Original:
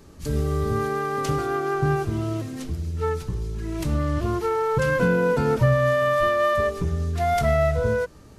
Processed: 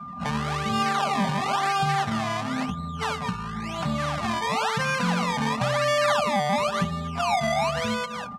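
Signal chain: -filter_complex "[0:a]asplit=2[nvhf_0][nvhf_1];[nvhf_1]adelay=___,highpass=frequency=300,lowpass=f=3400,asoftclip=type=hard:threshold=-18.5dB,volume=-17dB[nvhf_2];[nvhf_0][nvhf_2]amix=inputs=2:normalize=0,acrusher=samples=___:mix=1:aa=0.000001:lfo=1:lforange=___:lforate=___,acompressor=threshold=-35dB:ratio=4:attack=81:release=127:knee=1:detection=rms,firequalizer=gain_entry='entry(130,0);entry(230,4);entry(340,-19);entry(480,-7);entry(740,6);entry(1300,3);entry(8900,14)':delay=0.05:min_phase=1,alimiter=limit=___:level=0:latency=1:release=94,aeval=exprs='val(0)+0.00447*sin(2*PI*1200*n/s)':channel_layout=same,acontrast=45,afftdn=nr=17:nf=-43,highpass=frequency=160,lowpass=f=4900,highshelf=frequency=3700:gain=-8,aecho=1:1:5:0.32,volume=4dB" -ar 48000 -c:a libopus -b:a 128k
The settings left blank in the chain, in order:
210, 22, 22, 0.97, -14.5dB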